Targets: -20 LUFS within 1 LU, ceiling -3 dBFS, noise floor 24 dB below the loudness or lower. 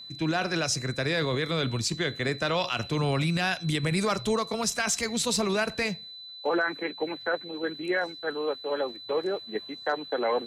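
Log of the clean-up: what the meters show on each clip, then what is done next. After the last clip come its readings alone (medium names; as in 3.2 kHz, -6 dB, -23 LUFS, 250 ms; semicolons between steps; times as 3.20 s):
steady tone 4 kHz; tone level -41 dBFS; loudness -28.5 LUFS; peak level -15.5 dBFS; loudness target -20.0 LUFS
-> band-stop 4 kHz, Q 30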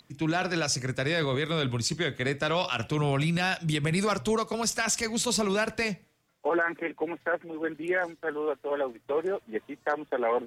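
steady tone not found; loudness -28.5 LUFS; peak level -16.0 dBFS; loudness target -20.0 LUFS
-> trim +8.5 dB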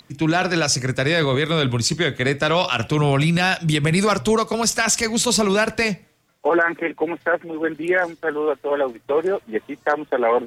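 loudness -20.0 LUFS; peak level -7.5 dBFS; noise floor -57 dBFS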